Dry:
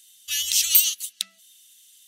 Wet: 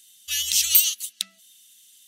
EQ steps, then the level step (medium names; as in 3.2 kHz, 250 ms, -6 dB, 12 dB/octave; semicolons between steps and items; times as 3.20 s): bass shelf 390 Hz +6 dB; 0.0 dB